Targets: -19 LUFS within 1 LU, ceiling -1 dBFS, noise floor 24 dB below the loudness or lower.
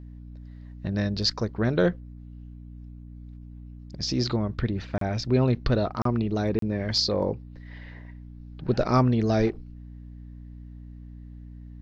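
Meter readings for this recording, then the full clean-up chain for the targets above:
dropouts 3; longest dropout 33 ms; hum 60 Hz; highest harmonic 300 Hz; hum level -41 dBFS; loudness -26.0 LUFS; peak level -9.5 dBFS; loudness target -19.0 LUFS
-> interpolate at 4.98/6.02/6.59 s, 33 ms; de-hum 60 Hz, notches 5; trim +7 dB

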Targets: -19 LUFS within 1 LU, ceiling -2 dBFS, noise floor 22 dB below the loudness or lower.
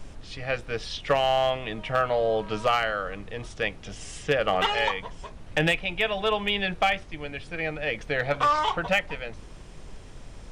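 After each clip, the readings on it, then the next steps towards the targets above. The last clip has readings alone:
clipped samples 0.2%; clipping level -14.5 dBFS; noise floor -44 dBFS; noise floor target -49 dBFS; loudness -26.5 LUFS; peak level -14.5 dBFS; loudness target -19.0 LUFS
-> clip repair -14.5 dBFS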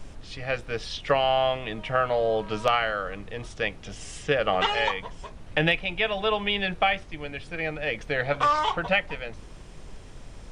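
clipped samples 0.0%; noise floor -44 dBFS; noise floor target -48 dBFS
-> noise print and reduce 6 dB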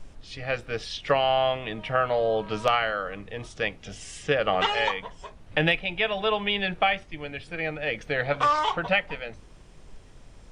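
noise floor -49 dBFS; loudness -26.0 LUFS; peak level -5.5 dBFS; loudness target -19.0 LUFS
-> trim +7 dB; peak limiter -2 dBFS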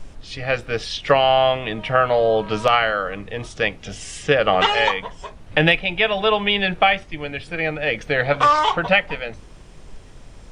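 loudness -19.0 LUFS; peak level -2.0 dBFS; noise floor -42 dBFS

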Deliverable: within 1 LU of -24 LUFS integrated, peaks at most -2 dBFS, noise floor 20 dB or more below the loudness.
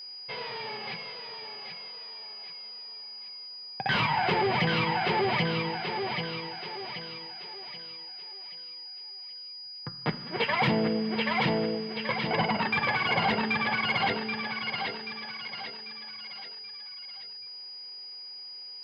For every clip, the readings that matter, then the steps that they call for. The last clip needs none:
steady tone 4.9 kHz; tone level -40 dBFS; loudness -30.5 LUFS; peak level -14.0 dBFS; loudness target -24.0 LUFS
-> band-stop 4.9 kHz, Q 30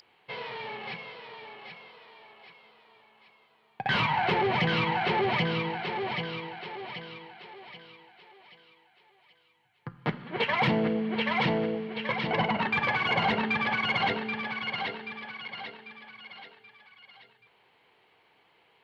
steady tone not found; loudness -29.0 LUFS; peak level -14.0 dBFS; loudness target -24.0 LUFS
-> trim +5 dB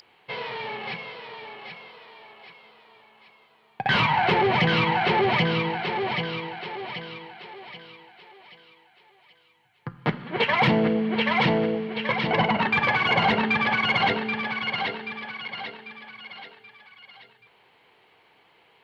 loudness -24.0 LUFS; peak level -9.0 dBFS; noise floor -60 dBFS

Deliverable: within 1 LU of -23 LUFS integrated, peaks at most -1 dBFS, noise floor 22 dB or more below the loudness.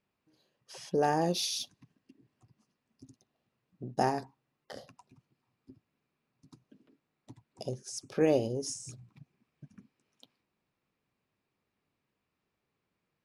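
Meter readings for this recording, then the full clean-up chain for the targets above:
loudness -32.0 LUFS; peak level -13.5 dBFS; loudness target -23.0 LUFS
-> trim +9 dB

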